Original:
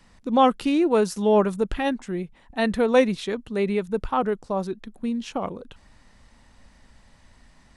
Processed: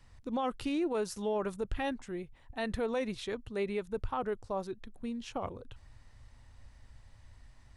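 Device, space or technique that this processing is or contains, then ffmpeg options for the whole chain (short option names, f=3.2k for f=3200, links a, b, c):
car stereo with a boomy subwoofer: -af "lowshelf=f=140:t=q:w=3:g=7,alimiter=limit=-17dB:level=0:latency=1:release=50,volume=-8dB"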